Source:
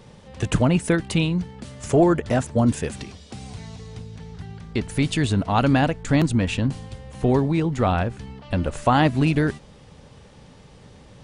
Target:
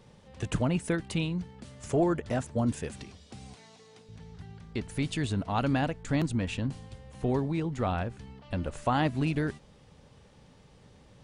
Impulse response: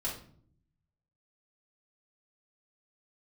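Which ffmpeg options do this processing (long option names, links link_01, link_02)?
-filter_complex "[0:a]asettb=1/sr,asplit=3[link_01][link_02][link_03];[link_01]atrim=end=3.544[link_04];[link_02]atrim=start=3.54:end=4.09,asetpts=PTS-STARTPTS,afade=type=in:duration=0.004:curve=qsin,afade=type=out:start_time=0.546:duration=0.004:curve=qsin,highpass=330[link_05];[link_03]atrim=start=4.086[link_06];[link_04][link_05]acrossfade=duration=0.004:curve1=hsin:curve2=qsin[link_07];[link_07][link_06]acrossfade=duration=0.004:curve1=qsin:curve2=hsin,volume=-9dB"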